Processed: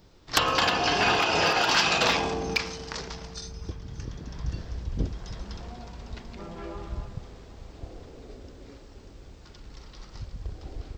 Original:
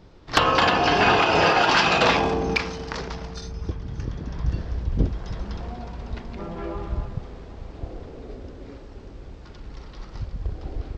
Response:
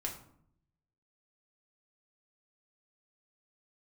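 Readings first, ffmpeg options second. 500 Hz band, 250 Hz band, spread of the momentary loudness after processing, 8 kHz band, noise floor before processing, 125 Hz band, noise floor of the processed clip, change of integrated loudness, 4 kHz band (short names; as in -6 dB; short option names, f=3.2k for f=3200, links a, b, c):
-6.5 dB, -7.0 dB, 21 LU, +3.5 dB, -42 dBFS, -7.0 dB, -49 dBFS, -3.0 dB, -1.0 dB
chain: -filter_complex "[0:a]aemphasis=mode=production:type=75fm,asplit=2[a][b];[1:a]atrim=start_sample=2205,adelay=111[c];[b][c]afir=irnorm=-1:irlink=0,volume=-22dB[d];[a][d]amix=inputs=2:normalize=0,volume=-6dB"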